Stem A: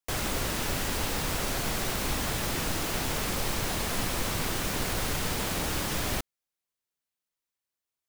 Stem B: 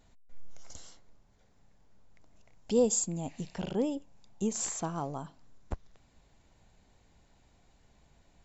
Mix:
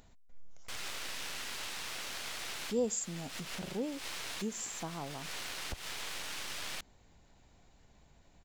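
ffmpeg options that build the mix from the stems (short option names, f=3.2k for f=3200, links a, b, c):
-filter_complex "[0:a]bandpass=f=3.1k:t=q:w=0.79:csg=0,aeval=exprs='max(val(0),0)':c=same,adelay=600,volume=0dB[a];[1:a]acompressor=mode=upward:threshold=-46dB:ratio=2.5,volume=-6.5dB,asplit=2[b][c];[c]apad=whole_len=383078[d];[a][d]sidechaincompress=threshold=-46dB:ratio=6:attack=6.3:release=142[e];[e][b]amix=inputs=2:normalize=0"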